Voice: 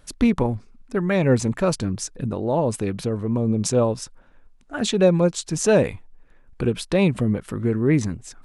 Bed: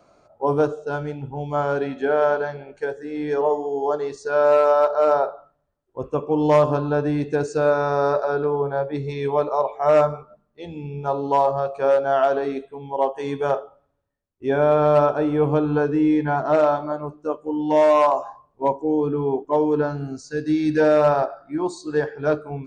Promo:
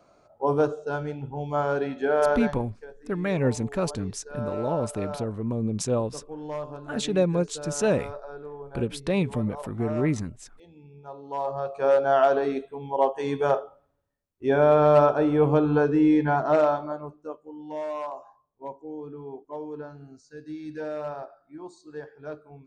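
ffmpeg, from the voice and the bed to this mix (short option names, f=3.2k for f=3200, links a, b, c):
-filter_complex "[0:a]adelay=2150,volume=-6dB[a];[1:a]volume=13.5dB,afade=t=out:st=2.47:d=0.23:silence=0.188365,afade=t=in:st=11.26:d=0.8:silence=0.149624,afade=t=out:st=16.29:d=1.22:silence=0.16788[b];[a][b]amix=inputs=2:normalize=0"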